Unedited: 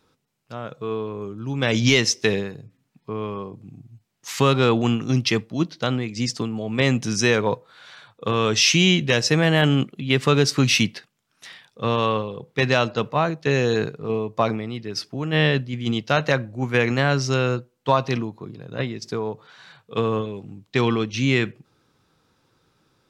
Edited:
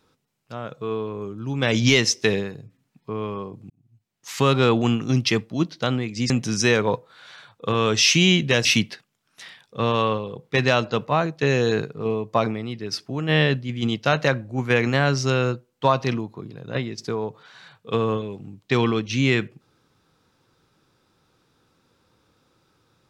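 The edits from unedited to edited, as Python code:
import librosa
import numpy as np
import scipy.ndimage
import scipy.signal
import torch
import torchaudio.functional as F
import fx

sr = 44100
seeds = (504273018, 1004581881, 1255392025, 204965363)

y = fx.edit(x, sr, fx.fade_in_span(start_s=3.7, length_s=0.85),
    fx.cut(start_s=6.3, length_s=0.59),
    fx.cut(start_s=9.24, length_s=1.45), tone=tone)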